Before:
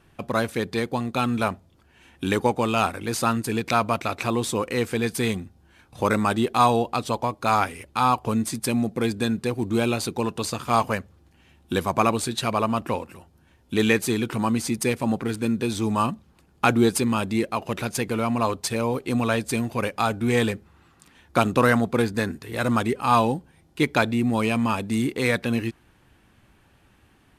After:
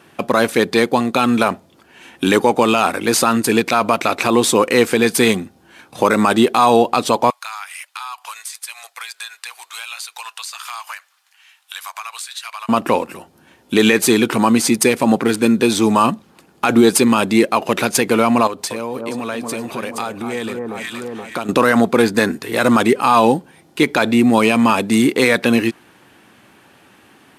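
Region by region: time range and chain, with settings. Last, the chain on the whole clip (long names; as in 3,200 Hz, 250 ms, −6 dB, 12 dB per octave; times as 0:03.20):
0:07.30–0:12.69: Bessel high-pass filter 1,600 Hz, order 6 + downward compressor, threshold −39 dBFS
0:18.47–0:21.49: delay that swaps between a low-pass and a high-pass 236 ms, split 1,300 Hz, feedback 58%, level −7 dB + downward compressor 4 to 1, threshold −34 dBFS
whole clip: high-pass filter 220 Hz 12 dB per octave; boost into a limiter +13.5 dB; level −1 dB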